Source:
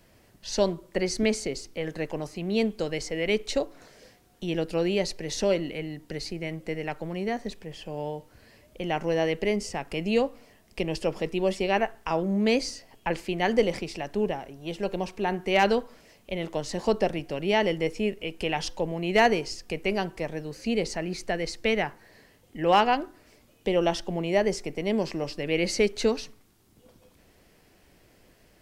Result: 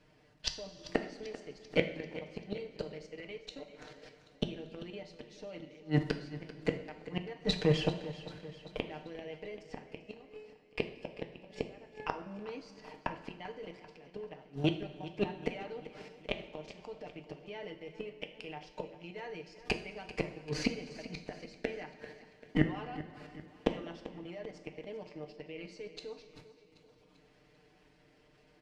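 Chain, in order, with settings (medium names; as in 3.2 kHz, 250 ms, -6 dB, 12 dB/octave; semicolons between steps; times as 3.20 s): companding laws mixed up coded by A; high-pass 47 Hz 6 dB/octave; gate -57 dBFS, range -14 dB; low-pass 4.5 kHz 12 dB/octave; comb 6.6 ms, depth 79%; level held to a coarse grid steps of 14 dB; 9.86–12.14 s: feedback comb 430 Hz, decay 0.72 s, mix 80%; inverted gate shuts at -33 dBFS, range -34 dB; feedback delay 391 ms, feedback 54%, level -15.5 dB; two-slope reverb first 0.5 s, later 2.9 s, from -14 dB, DRR 6 dB; trim +17.5 dB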